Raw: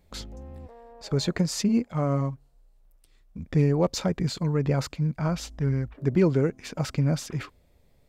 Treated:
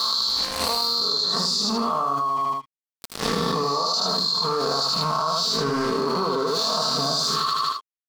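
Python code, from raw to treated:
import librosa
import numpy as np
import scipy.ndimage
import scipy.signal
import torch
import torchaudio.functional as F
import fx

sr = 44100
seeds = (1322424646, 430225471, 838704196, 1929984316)

p1 = fx.spec_swells(x, sr, rise_s=0.92)
p2 = fx.peak_eq(p1, sr, hz=1800.0, db=-5.0, octaves=1.5)
p3 = p2 + 0.73 * np.pad(p2, (int(4.5 * sr / 1000.0), 0))[:len(p2)]
p4 = np.clip(10.0 ** (18.0 / 20.0) * p3, -1.0, 1.0) / 10.0 ** (18.0 / 20.0)
p5 = p3 + F.gain(torch.from_numpy(p4), -4.0).numpy()
p6 = fx.double_bandpass(p5, sr, hz=2200.0, octaves=1.9)
p7 = np.sign(p6) * np.maximum(np.abs(p6) - 10.0 ** (-59.0 / 20.0), 0.0)
p8 = fx.rider(p7, sr, range_db=10, speed_s=0.5)
p9 = p8 + fx.echo_feedback(p8, sr, ms=78, feedback_pct=26, wet_db=-3, dry=0)
p10 = fx.env_flatten(p9, sr, amount_pct=100)
y = F.gain(torch.from_numpy(p10), 7.0).numpy()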